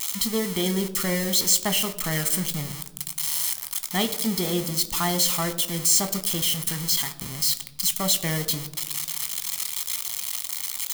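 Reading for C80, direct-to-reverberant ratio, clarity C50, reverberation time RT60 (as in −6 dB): 17.0 dB, 9.0 dB, 15.5 dB, 1.1 s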